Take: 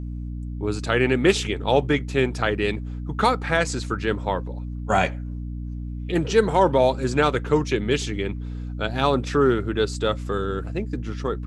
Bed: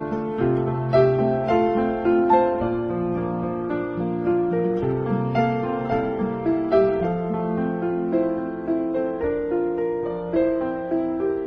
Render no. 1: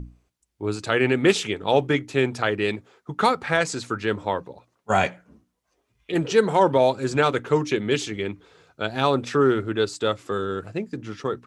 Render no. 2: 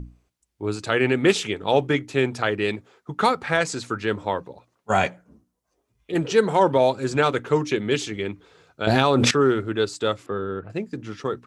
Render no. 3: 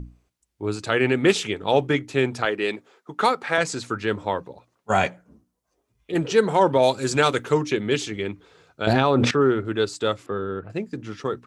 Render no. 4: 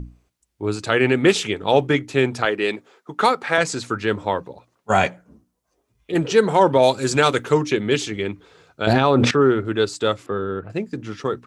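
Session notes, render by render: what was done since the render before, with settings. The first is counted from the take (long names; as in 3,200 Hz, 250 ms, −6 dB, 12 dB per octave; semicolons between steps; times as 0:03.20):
mains-hum notches 60/120/180/240/300 Hz
0:05.08–0:06.15: parametric band 2,500 Hz −7.5 dB 2 octaves; 0:08.87–0:09.31: envelope flattener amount 100%; 0:10.26–0:10.70: high-frequency loss of the air 470 metres
0:02.45–0:03.58: high-pass filter 250 Hz; 0:06.82–0:07.53: high-shelf EQ 3,100 Hz → 4,600 Hz +11 dB; 0:08.93–0:09.65: low-pass filter 2,500 Hz 6 dB per octave
level +3 dB; brickwall limiter −3 dBFS, peak gain reduction 2.5 dB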